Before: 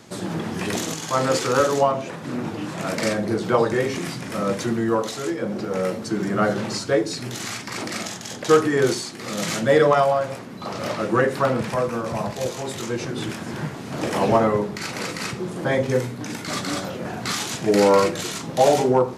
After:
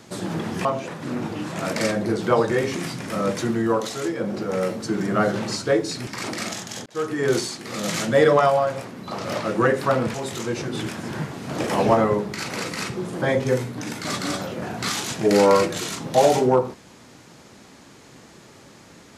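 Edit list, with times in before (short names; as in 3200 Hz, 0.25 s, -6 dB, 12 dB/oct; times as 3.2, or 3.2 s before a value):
0.65–1.87 cut
7.29–7.61 cut
8.4–8.92 fade in
11.68–12.57 cut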